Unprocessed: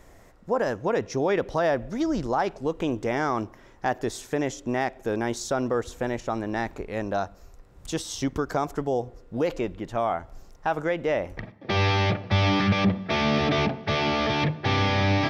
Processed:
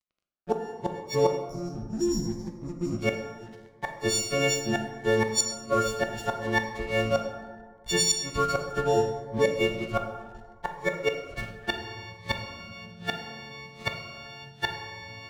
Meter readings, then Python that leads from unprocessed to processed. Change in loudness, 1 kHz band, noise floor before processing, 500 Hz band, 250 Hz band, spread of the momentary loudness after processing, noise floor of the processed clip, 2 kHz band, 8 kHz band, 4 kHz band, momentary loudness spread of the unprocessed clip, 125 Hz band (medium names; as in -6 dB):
-2.0 dB, -5.0 dB, -52 dBFS, -2.0 dB, -6.0 dB, 16 LU, -52 dBFS, -2.0 dB, +9.0 dB, -0.5 dB, 9 LU, -7.5 dB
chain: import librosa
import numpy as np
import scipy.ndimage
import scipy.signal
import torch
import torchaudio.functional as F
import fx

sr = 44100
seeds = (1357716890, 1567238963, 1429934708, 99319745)

y = fx.freq_snap(x, sr, grid_st=4)
y = fx.spec_erase(y, sr, start_s=1.37, length_s=1.62, low_hz=390.0, high_hz=5000.0)
y = fx.env_lowpass(y, sr, base_hz=1100.0, full_db=-18.5)
y = fx.peak_eq(y, sr, hz=290.0, db=-11.0, octaves=0.53)
y = np.sign(y) * np.maximum(np.abs(y) - 10.0 ** (-44.5 / 20.0), 0.0)
y = fx.gate_flip(y, sr, shuts_db=-16.0, range_db=-27)
y = fx.rev_plate(y, sr, seeds[0], rt60_s=1.6, hf_ratio=0.45, predelay_ms=0, drr_db=3.5)
y = fx.notch_cascade(y, sr, direction='rising', hz=0.72)
y = F.gain(torch.from_numpy(y), 5.0).numpy()